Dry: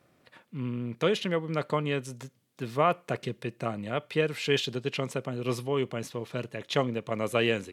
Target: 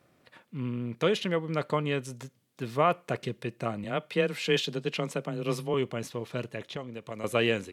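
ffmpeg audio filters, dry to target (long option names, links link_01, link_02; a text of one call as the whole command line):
ffmpeg -i in.wav -filter_complex "[0:a]asettb=1/sr,asplit=3[link_01][link_02][link_03];[link_01]atrim=end=3.844[link_04];[link_02]atrim=start=3.84:end=5.74,asetpts=PTS-STARTPTS,afade=type=in:duration=0.004:curve=qsin,afade=type=out:start_time=1.896:duration=0.004:curve=qsin,afreqshift=18[link_05];[link_03]atrim=start=5.736[link_06];[link_04][link_05]acrossfade=duration=0.004:curve1=hsin:curve2=qsin[link_07];[link_07][link_06]acrossfade=duration=0.004:curve1=qsin:curve2=hsin,asettb=1/sr,asplit=3[link_08][link_09][link_10];[link_08]atrim=end=6.634[link_11];[link_09]atrim=start=6.63:end=7.24,asetpts=PTS-STARTPTS,afade=type=in:duration=0.004:curve=qsin,afade=type=out:start_time=0.606:duration=0.004:curve=qsin,acrossover=split=720|3900[link_12][link_13][link_14];[link_12]acompressor=threshold=-38dB:ratio=4[link_15];[link_13]acompressor=threshold=-45dB:ratio=4[link_16];[link_14]acompressor=threshold=-54dB:ratio=4[link_17];[link_15][link_16][link_17]amix=inputs=3:normalize=0[link_18];[link_10]atrim=start=7.236[link_19];[link_11][link_18]acrossfade=duration=0.004:curve1=hsin:curve2=qsin[link_20];[link_20][link_19]acrossfade=duration=0.004:curve1=qsin:curve2=hsin" out.wav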